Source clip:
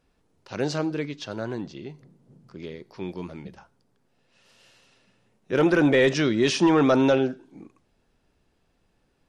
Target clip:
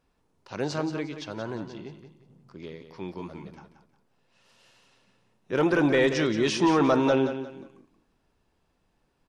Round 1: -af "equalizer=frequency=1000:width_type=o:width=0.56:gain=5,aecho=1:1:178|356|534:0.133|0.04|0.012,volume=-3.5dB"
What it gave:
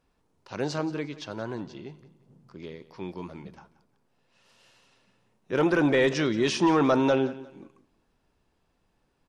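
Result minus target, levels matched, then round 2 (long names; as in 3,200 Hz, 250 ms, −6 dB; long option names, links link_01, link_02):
echo-to-direct −7.5 dB
-af "equalizer=frequency=1000:width_type=o:width=0.56:gain=5,aecho=1:1:178|356|534:0.316|0.0949|0.0285,volume=-3.5dB"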